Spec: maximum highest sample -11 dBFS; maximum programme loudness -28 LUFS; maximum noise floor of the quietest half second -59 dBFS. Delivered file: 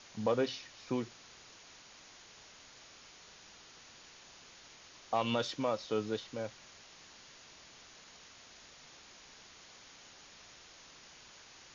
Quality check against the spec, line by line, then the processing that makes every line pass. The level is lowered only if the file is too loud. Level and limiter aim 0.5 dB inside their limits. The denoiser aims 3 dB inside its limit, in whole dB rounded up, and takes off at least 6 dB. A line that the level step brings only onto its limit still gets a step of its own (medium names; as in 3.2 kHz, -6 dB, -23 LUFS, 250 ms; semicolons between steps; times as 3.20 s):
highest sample -18.5 dBFS: pass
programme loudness -36.0 LUFS: pass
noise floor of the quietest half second -57 dBFS: fail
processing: noise reduction 6 dB, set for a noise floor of -57 dBFS